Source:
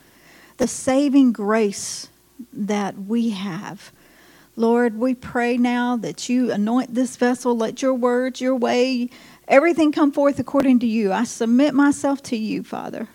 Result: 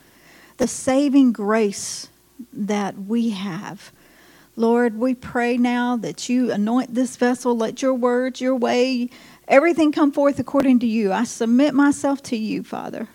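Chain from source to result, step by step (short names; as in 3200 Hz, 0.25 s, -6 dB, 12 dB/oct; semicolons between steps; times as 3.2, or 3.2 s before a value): 8.01–8.48 high shelf 9400 Hz -5 dB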